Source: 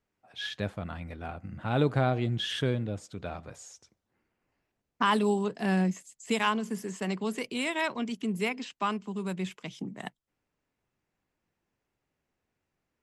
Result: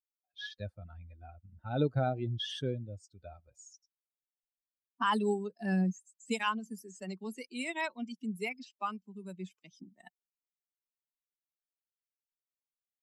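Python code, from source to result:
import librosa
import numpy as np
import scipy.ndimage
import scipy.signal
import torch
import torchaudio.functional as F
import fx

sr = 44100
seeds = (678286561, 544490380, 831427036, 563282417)

y = fx.bin_expand(x, sr, power=2.0)
y = y * librosa.db_to_amplitude(-1.5)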